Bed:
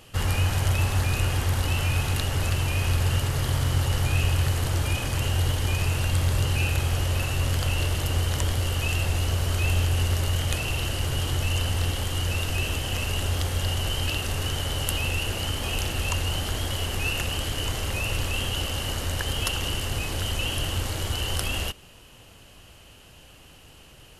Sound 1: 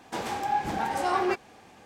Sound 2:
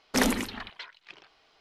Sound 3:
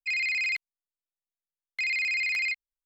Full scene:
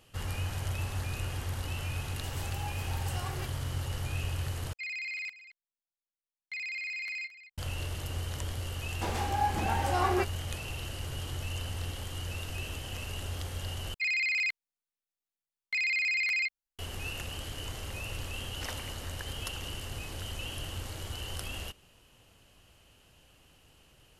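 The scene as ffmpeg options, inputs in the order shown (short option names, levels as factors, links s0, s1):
-filter_complex "[1:a]asplit=2[s0][s1];[3:a]asplit=2[s2][s3];[0:a]volume=0.282[s4];[s0]aemphasis=mode=production:type=riaa[s5];[s2]aecho=1:1:222:0.178[s6];[2:a]highpass=610[s7];[s4]asplit=3[s8][s9][s10];[s8]atrim=end=4.734[s11];[s6]atrim=end=2.85,asetpts=PTS-STARTPTS,volume=0.335[s12];[s9]atrim=start=7.576:end=13.944[s13];[s3]atrim=end=2.85,asetpts=PTS-STARTPTS,volume=0.841[s14];[s10]atrim=start=16.786[s15];[s5]atrim=end=1.85,asetpts=PTS-STARTPTS,volume=0.158,afade=t=in:d=0.004:c=hsin,afade=t=out:st=1.846:d=0.004:c=hsin,adelay=2110[s16];[s1]atrim=end=1.85,asetpts=PTS-STARTPTS,volume=0.75,afade=t=in:d=0.004:c=hsin,afade=t=out:st=1.846:d=0.004:c=hsin,adelay=8890[s17];[s7]atrim=end=1.6,asetpts=PTS-STARTPTS,volume=0.188,afade=t=in:d=0.004:c=hsin,afade=t=out:st=1.596:d=0.004:c=hsin,adelay=18470[s18];[s11][s12]acrossfade=d=0.004:c1=hsin:c2=hsin[s19];[s19][s13]acrossfade=d=0.004:c1=hsin:c2=hsin[s20];[s20][s14]acrossfade=d=0.004:c1=hsin:c2=hsin[s21];[s21][s15]acrossfade=d=0.004:c1=hsin:c2=hsin[s22];[s22][s16][s17][s18]amix=inputs=4:normalize=0"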